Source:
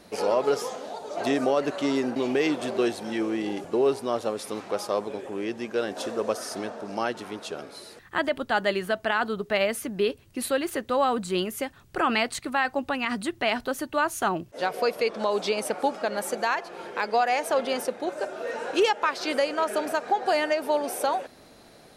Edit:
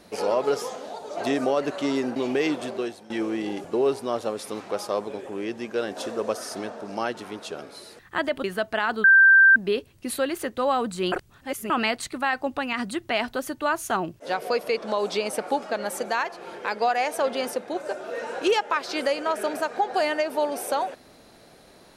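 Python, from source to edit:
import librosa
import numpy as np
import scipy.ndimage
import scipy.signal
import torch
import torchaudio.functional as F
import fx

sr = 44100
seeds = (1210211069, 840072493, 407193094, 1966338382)

y = fx.edit(x, sr, fx.fade_out_to(start_s=2.54, length_s=0.56, floor_db=-17.5),
    fx.cut(start_s=8.44, length_s=0.32),
    fx.bleep(start_s=9.36, length_s=0.52, hz=1570.0, db=-10.5),
    fx.reverse_span(start_s=11.44, length_s=0.58), tone=tone)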